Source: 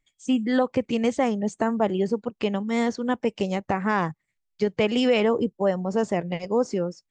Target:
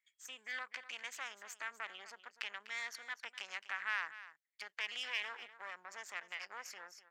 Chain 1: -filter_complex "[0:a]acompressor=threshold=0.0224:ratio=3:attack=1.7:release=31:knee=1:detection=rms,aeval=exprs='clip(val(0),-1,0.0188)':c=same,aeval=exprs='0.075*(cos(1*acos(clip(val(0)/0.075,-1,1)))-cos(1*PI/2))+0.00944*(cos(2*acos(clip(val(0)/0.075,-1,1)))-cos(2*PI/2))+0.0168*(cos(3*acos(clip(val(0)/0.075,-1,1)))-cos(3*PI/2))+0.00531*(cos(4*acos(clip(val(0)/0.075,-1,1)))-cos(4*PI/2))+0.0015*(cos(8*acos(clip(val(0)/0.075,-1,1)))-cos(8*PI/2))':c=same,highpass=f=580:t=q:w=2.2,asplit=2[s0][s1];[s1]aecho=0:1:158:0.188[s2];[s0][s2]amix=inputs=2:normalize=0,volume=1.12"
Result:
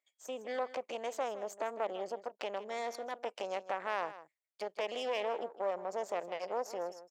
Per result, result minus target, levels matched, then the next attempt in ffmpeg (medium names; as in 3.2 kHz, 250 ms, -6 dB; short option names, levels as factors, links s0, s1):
500 Hz band +18.5 dB; echo 90 ms early
-filter_complex "[0:a]acompressor=threshold=0.0224:ratio=3:attack=1.7:release=31:knee=1:detection=rms,aeval=exprs='clip(val(0),-1,0.0188)':c=same,aeval=exprs='0.075*(cos(1*acos(clip(val(0)/0.075,-1,1)))-cos(1*PI/2))+0.00944*(cos(2*acos(clip(val(0)/0.075,-1,1)))-cos(2*PI/2))+0.0168*(cos(3*acos(clip(val(0)/0.075,-1,1)))-cos(3*PI/2))+0.00531*(cos(4*acos(clip(val(0)/0.075,-1,1)))-cos(4*PI/2))+0.0015*(cos(8*acos(clip(val(0)/0.075,-1,1)))-cos(8*PI/2))':c=same,highpass=f=1700:t=q:w=2.2,asplit=2[s0][s1];[s1]aecho=0:1:158:0.188[s2];[s0][s2]amix=inputs=2:normalize=0,volume=1.12"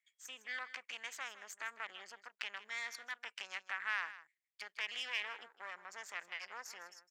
echo 90 ms early
-filter_complex "[0:a]acompressor=threshold=0.0224:ratio=3:attack=1.7:release=31:knee=1:detection=rms,aeval=exprs='clip(val(0),-1,0.0188)':c=same,aeval=exprs='0.075*(cos(1*acos(clip(val(0)/0.075,-1,1)))-cos(1*PI/2))+0.00944*(cos(2*acos(clip(val(0)/0.075,-1,1)))-cos(2*PI/2))+0.0168*(cos(3*acos(clip(val(0)/0.075,-1,1)))-cos(3*PI/2))+0.00531*(cos(4*acos(clip(val(0)/0.075,-1,1)))-cos(4*PI/2))+0.0015*(cos(8*acos(clip(val(0)/0.075,-1,1)))-cos(8*PI/2))':c=same,highpass=f=1700:t=q:w=2.2,asplit=2[s0][s1];[s1]aecho=0:1:248:0.188[s2];[s0][s2]amix=inputs=2:normalize=0,volume=1.12"